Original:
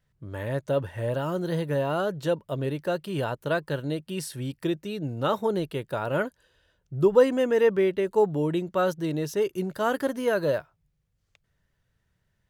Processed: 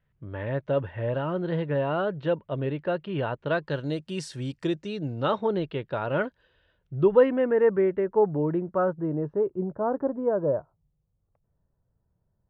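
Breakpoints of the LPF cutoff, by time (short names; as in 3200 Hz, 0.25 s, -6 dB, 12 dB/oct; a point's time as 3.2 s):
LPF 24 dB/oct
3.4 s 3100 Hz
3.99 s 7500 Hz
4.71 s 7500 Hz
5.44 s 3700 Hz
6.95 s 3700 Hz
7.57 s 1800 Hz
8.27 s 1800 Hz
9.66 s 1000 Hz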